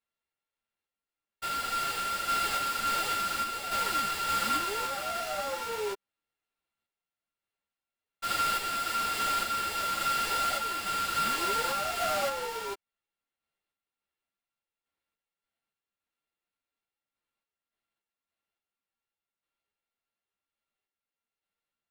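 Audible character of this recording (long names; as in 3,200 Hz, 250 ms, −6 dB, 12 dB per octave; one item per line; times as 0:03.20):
a buzz of ramps at a fixed pitch in blocks of 32 samples
sample-and-hold tremolo 3.5 Hz
aliases and images of a low sample rate 6,200 Hz, jitter 20%
a shimmering, thickened sound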